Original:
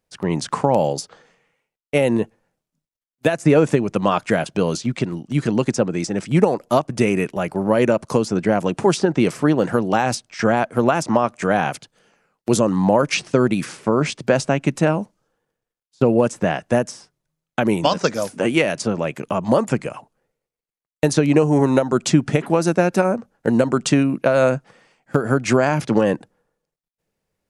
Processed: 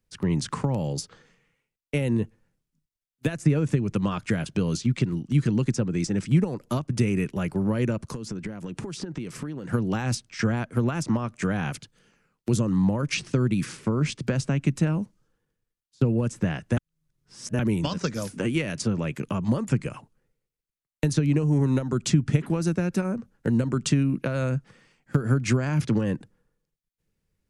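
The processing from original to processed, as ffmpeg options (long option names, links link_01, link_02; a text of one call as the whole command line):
ffmpeg -i in.wav -filter_complex "[0:a]asettb=1/sr,asplit=3[link_01][link_02][link_03];[link_01]atrim=end=8.104[link_04];[link_02]atrim=start=8.1:end=9.73,asetpts=PTS-STARTPTS,afade=type=in:duration=0.004:curve=qsin,afade=type=out:start_time=1.626:duration=0.004:curve=qsin,acompressor=threshold=-27dB:ratio=20:attack=3.2:release=140:knee=1:detection=peak[link_05];[link_03]atrim=start=9.726[link_06];[link_04][link_05]acrossfade=duration=0.004:curve1=hsin:curve2=qsin[link_07];[link_07][link_06]acrossfade=duration=0.004:curve1=qsin:curve2=hsin,asplit=3[link_08][link_09][link_10];[link_08]atrim=end=16.772[link_11];[link_09]atrim=start=16.768:end=17.592,asetpts=PTS-STARTPTS,areverse[link_12];[link_10]atrim=start=17.588[link_13];[link_11][link_12]acrossfade=duration=0.004:curve1=hsin:curve2=hsin[link_14];[link_14][link_13]acrossfade=duration=0.004:curve1=hsin:curve2=hsin,lowshelf=frequency=150:gain=11,acrossover=split=140[link_15][link_16];[link_16]acompressor=threshold=-19dB:ratio=4[link_17];[link_15][link_17]amix=inputs=2:normalize=0,equalizer=frequency=700:width=1.4:gain=-9.5,volume=-3dB" out.wav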